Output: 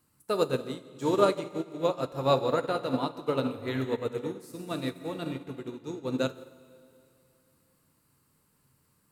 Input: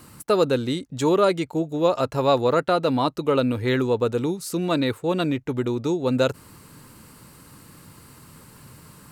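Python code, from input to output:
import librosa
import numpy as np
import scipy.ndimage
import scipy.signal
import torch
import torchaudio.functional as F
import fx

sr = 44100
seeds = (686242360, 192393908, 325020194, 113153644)

y = fx.high_shelf(x, sr, hz=10000.0, db=7.0)
y = fx.rev_plate(y, sr, seeds[0], rt60_s=2.9, hf_ratio=0.9, predelay_ms=0, drr_db=3.0)
y = fx.upward_expand(y, sr, threshold_db=-28.0, expansion=2.5)
y = y * 10.0 ** (-3.5 / 20.0)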